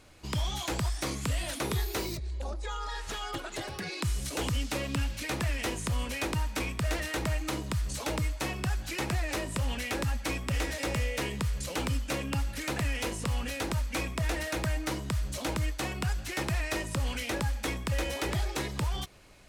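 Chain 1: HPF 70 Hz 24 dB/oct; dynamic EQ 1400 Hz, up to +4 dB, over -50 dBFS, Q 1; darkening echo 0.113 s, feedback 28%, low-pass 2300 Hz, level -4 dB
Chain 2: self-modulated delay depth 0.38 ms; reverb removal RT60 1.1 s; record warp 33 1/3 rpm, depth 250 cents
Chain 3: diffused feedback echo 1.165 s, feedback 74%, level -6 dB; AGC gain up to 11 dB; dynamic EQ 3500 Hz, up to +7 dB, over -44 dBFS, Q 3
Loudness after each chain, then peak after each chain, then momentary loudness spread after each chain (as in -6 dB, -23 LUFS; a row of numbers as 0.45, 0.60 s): -31.5, -35.0, -19.0 LUFS; -16.5, -20.0, -5.0 dBFS; 4, 4, 3 LU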